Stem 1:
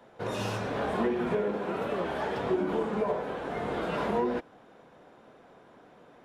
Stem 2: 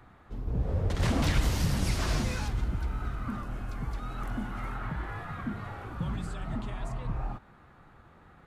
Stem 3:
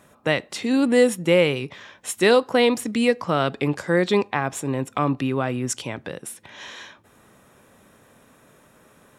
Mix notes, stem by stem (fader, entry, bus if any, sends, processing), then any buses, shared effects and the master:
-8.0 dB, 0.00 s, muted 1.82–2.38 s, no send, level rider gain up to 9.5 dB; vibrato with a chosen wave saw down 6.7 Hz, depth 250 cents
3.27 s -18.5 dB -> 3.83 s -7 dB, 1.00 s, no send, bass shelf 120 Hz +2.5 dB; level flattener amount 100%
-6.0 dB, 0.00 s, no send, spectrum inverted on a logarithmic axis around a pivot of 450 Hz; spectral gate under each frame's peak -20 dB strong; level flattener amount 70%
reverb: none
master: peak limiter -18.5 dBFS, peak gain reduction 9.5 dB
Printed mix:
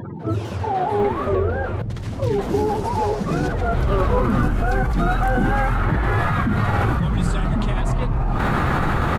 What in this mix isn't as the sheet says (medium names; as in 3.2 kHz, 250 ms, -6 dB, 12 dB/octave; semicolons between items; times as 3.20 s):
stem 2 -18.5 dB -> -12.5 dB; master: missing peak limiter -18.5 dBFS, peak gain reduction 9.5 dB